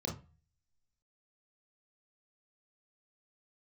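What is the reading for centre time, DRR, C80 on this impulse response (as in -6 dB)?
23 ms, -1.5 dB, 17.5 dB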